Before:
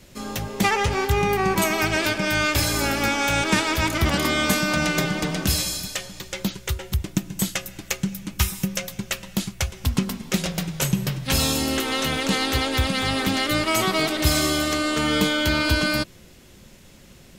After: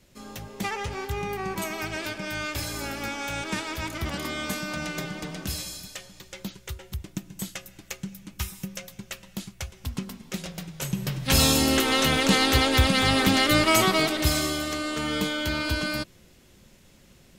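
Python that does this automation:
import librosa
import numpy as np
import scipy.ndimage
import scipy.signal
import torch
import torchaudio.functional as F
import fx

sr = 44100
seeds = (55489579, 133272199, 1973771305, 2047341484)

y = fx.gain(x, sr, db=fx.line((10.76, -10.0), (11.4, 2.0), (13.73, 2.0), (14.59, -6.5)))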